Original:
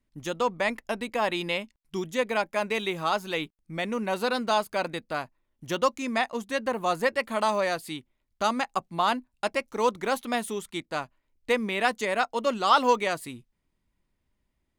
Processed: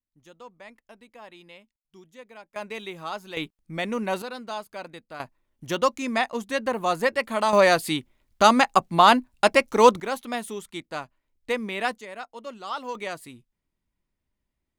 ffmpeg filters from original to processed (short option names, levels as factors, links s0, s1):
-af "asetnsamples=n=441:p=0,asendcmd='2.56 volume volume -7dB;3.37 volume volume 1.5dB;4.22 volume volume -9dB;5.2 volume volume 2dB;7.53 volume volume 9.5dB;10 volume volume -2dB;11.98 volume volume -12dB;12.95 volume volume -5dB',volume=0.112"